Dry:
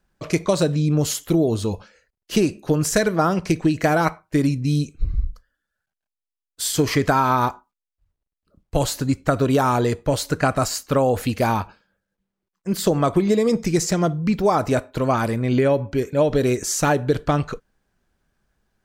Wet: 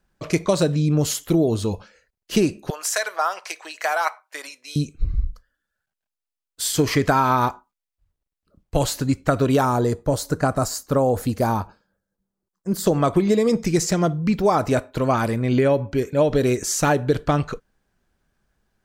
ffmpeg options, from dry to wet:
-filter_complex "[0:a]asettb=1/sr,asplit=3[s0][s1][s2];[s0]atrim=end=2.704[s3];[s1]atrim=start=2.7:end=4.76,asetpts=PTS-STARTPTS,afade=t=in:d=0.004:c=qsin,afade=t=out:st=2.056:d=0.004:c=qsin,highpass=f=700:w=0.5412,highpass=f=700:w=1.3066[s4];[s2]atrim=start=4.756[s5];[s3][s4]acrossfade=d=0.004:c1=hsin:c2=qsin[s6];[s6][s5]acrossfade=d=0.004:c1=qsin:c2=hsin,asettb=1/sr,asplit=3[s7][s8][s9];[s7]atrim=end=9.654[s10];[s8]atrim=start=9.65:end=12.86,asetpts=PTS-STARTPTS,afade=t=in:d=0.004:c=qsin,afade=t=out:st=3.206:d=0.004:c=qsin,equalizer=f=2600:w=1.1:g=-11.5[s11];[s9]atrim=start=12.856[s12];[s10][s11]acrossfade=d=0.004:c1=hsin:c2=qsin[s13];[s13][s12]acrossfade=d=0.004:c1=qsin:c2=hsin"

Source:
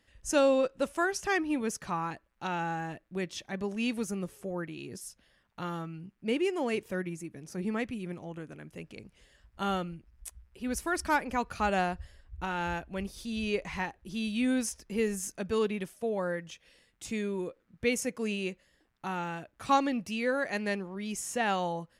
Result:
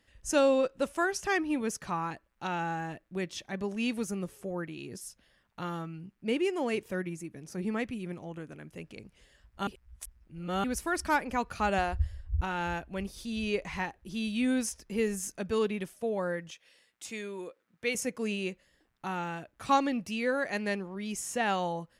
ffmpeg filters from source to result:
-filter_complex "[0:a]asettb=1/sr,asplit=3[s0][s1][s2];[s0]atrim=end=11.784[s3];[s1]atrim=start=11.78:end=12.41,asetpts=PTS-STARTPTS,afade=t=in:d=0.004:c=qsin,afade=t=out:st=0.626:d=0.004:c=qsin,lowshelf=f=120:t=q:w=3:g=11[s4];[s2]atrim=start=12.406[s5];[s3][s4]acrossfade=d=0.004:c1=hsin:c2=qsin[s6];[s6][s5]acrossfade=d=0.004:c1=qsin:c2=hsin,asettb=1/sr,asplit=3[s7][s8][s9];[s7]atrim=end=16.514[s10];[s8]atrim=start=16.51:end=17.95,asetpts=PTS-STARTPTS,afade=t=in:d=0.004:c=qsin,afade=t=out:st=1.436:d=0.004:c=qsin,highpass=f=590:p=1[s11];[s9]atrim=start=17.946[s12];[s10][s11]acrossfade=d=0.004:c1=hsin:c2=qsin[s13];[s13][s12]acrossfade=d=0.004:c1=qsin:c2=hsin,asplit=3[s14][s15][s16];[s14]atrim=end=9.672[s17];[s15]atrim=start=9.668:end=10.642,asetpts=PTS-STARTPTS,areverse[s18];[s16]atrim=start=10.638[s19];[s17][s18]acrossfade=d=0.004:c1=hsin:c2=hsin[s20];[s20][s19]acrossfade=d=0.004:c1=hsin:c2=hsin"

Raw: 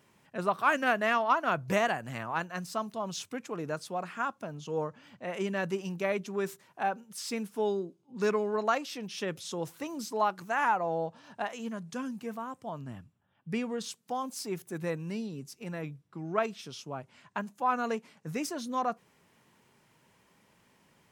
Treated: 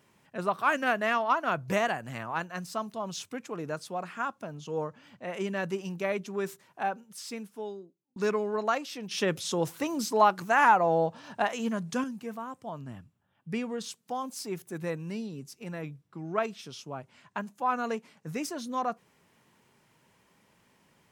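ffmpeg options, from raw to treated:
-filter_complex "[0:a]asettb=1/sr,asplit=3[s0][s1][s2];[s0]atrim=end=9.114[s3];[s1]atrim=start=9.11:end=12.04,asetpts=PTS-STARTPTS,afade=t=in:d=0.004:c=qsin,afade=t=out:st=2.926:d=0.004:c=qsin,acontrast=69[s4];[s2]atrim=start=12.036[s5];[s3][s4]acrossfade=d=0.004:c1=hsin:c2=qsin[s6];[s6][s5]acrossfade=d=0.004:c1=qsin:c2=hsin,asplit=2[s7][s8];[s7]atrim=end=8.16,asetpts=PTS-STARTPTS,afade=t=out:st=6.84:d=1.32[s9];[s8]atrim=start=8.16,asetpts=PTS-STARTPTS,afade=t=in:d=0.004:c=hsin[s10];[s9][s10]concat=n=2:v=0:a=1"

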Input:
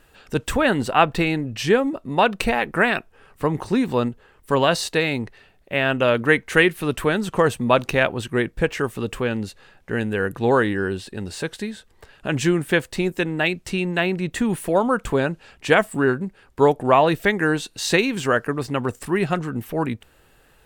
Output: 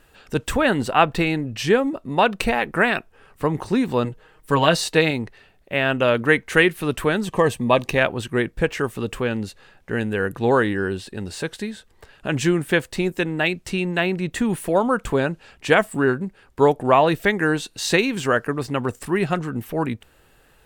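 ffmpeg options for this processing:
-filter_complex "[0:a]asettb=1/sr,asplit=3[s0][s1][s2];[s0]atrim=end=4.044[s3];[s1]atrim=start=4.04:end=5.11,asetpts=PTS-STARTPTS,afade=t=in:d=0.004:c=qsin,afade=t=out:st=1.066:d=0.004:c=qsin,aecho=1:1:6.4:0.64,atrim=end_sample=47187[s4];[s2]atrim=start=5.106[s5];[s3][s4]acrossfade=d=0.004:c1=hsin:c2=qsin[s6];[s6][s5]acrossfade=d=0.004:c1=qsin:c2=hsin,asettb=1/sr,asplit=3[s7][s8][s9];[s7]atrim=end=7.254[s10];[s8]atrim=start=7.25:end=7.98,asetpts=PTS-STARTPTS,afade=t=in:d=0.004:c=qsin,afade=t=out:st=0.726:d=0.004:c=qsin,asuperstop=centerf=1400:order=8:qfactor=5.1[s11];[s9]atrim=start=7.976[s12];[s10][s11]acrossfade=d=0.004:c1=hsin:c2=qsin[s13];[s13][s12]acrossfade=d=0.004:c1=qsin:c2=hsin"

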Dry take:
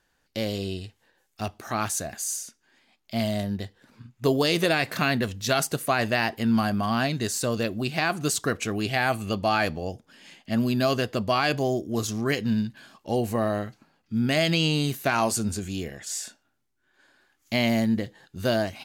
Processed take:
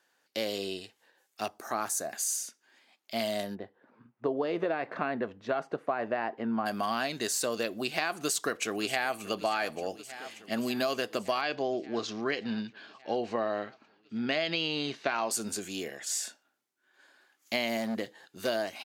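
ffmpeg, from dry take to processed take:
-filter_complex "[0:a]asettb=1/sr,asplit=3[s0][s1][s2];[s0]atrim=end=1.484[s3];[s1]atrim=start=1.48:end=2.13,asetpts=PTS-STARTPTS,afade=t=in:d=0.004:c=qsin,afade=t=out:st=0.646:d=0.004:c=qsin,equalizer=f=3000:w=1.1:g=-10.5[s4];[s2]atrim=start=2.126[s5];[s3][s4]acrossfade=d=0.004:c1=hsin:c2=qsin[s6];[s6][s5]acrossfade=d=0.004:c1=qsin:c2=hsin,asplit=3[s7][s8][s9];[s7]afade=t=out:st=3.54:d=0.02[s10];[s8]lowpass=1200,afade=t=in:st=3.54:d=0.02,afade=t=out:st=6.65:d=0.02[s11];[s9]afade=t=in:st=6.65:d=0.02[s12];[s10][s11][s12]amix=inputs=3:normalize=0,asplit=2[s13][s14];[s14]afade=t=in:st=8.13:d=0.01,afade=t=out:st=9.29:d=0.01,aecho=0:1:580|1160|1740|2320|2900|3480|4060|4640|5220|5800:0.141254|0.10594|0.0794552|0.0595914|0.0446936|0.0335202|0.0251401|0.0188551|0.0141413|0.010606[s15];[s13][s15]amix=inputs=2:normalize=0,asettb=1/sr,asplit=3[s16][s17][s18];[s16]atrim=end=11.414[s19];[s17]atrim=start=11.41:end=15.31,asetpts=PTS-STARTPTS,afade=t=in:d=0.004:c=qsin,afade=t=out:st=3.896:d=0.004:c=qsin,lowpass=f=4800:w=0.5412,lowpass=f=4800:w=1.3066[s20];[s18]atrim=start=15.306[s21];[s19][s20]acrossfade=d=0.004:c1=hsin:c2=qsin[s22];[s22][s21]acrossfade=d=0.004:c1=qsin:c2=hsin,asettb=1/sr,asplit=3[s23][s24][s25];[s23]atrim=end=17.774[s26];[s24]atrim=start=17.77:end=18.48,asetpts=PTS-STARTPTS,afade=t=in:d=0.004:c=qsin,afade=t=out:st=0.706:d=0.004:c=qsin,volume=10.6,asoftclip=hard,volume=0.0944[s27];[s25]atrim=start=18.476[s28];[s26][s27]acrossfade=d=0.004:c1=hsin:c2=qsin[s29];[s29][s28]acrossfade=d=0.004:c1=qsin:c2=hsin,highpass=350,acompressor=threshold=0.0501:ratio=6"

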